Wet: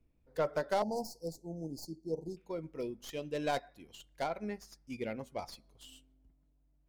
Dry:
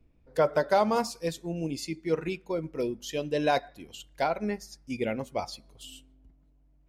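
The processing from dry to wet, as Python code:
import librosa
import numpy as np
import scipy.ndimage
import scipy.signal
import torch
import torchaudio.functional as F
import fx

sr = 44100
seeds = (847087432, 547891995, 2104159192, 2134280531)

y = fx.tracing_dist(x, sr, depth_ms=0.1)
y = fx.cheby1_bandstop(y, sr, low_hz=880.0, high_hz=4400.0, order=5, at=(0.82, 2.37))
y = y * librosa.db_to_amplitude(-8.5)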